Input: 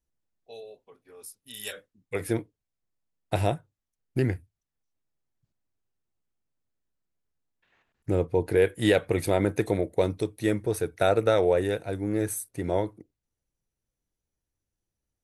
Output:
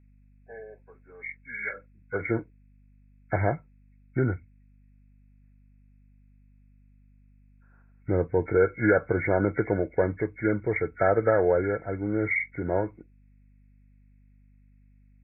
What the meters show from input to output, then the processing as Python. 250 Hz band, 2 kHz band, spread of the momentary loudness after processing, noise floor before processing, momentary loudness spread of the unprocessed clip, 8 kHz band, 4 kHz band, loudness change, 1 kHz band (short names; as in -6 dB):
0.0 dB, +5.5 dB, 16 LU, under -85 dBFS, 19 LU, under -40 dB, under -40 dB, 0.0 dB, +1.0 dB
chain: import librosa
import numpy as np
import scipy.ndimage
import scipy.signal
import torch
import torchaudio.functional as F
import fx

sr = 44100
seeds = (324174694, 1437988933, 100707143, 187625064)

y = fx.freq_compress(x, sr, knee_hz=1300.0, ratio=4.0)
y = fx.add_hum(y, sr, base_hz=50, snr_db=28)